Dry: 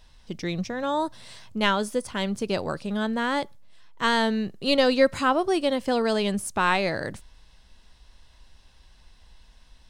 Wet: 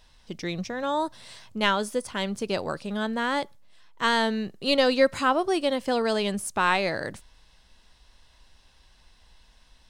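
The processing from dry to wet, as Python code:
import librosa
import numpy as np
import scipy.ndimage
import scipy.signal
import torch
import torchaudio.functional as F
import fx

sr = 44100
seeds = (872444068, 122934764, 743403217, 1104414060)

y = fx.low_shelf(x, sr, hz=240.0, db=-5.0)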